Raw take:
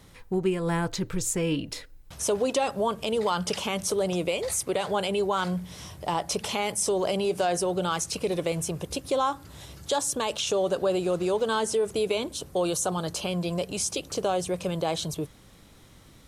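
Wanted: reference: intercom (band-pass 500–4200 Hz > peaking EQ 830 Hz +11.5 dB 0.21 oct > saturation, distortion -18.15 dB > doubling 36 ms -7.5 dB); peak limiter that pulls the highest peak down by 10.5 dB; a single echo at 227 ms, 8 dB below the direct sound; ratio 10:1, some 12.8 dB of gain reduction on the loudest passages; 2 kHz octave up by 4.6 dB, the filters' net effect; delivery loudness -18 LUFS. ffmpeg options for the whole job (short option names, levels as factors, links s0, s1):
-filter_complex "[0:a]equalizer=f=2000:t=o:g=6.5,acompressor=threshold=0.02:ratio=10,alimiter=level_in=1.78:limit=0.0631:level=0:latency=1,volume=0.562,highpass=500,lowpass=4200,equalizer=f=830:t=o:w=0.21:g=11.5,aecho=1:1:227:0.398,asoftclip=threshold=0.0316,asplit=2[s0][s1];[s1]adelay=36,volume=0.422[s2];[s0][s2]amix=inputs=2:normalize=0,volume=14.1"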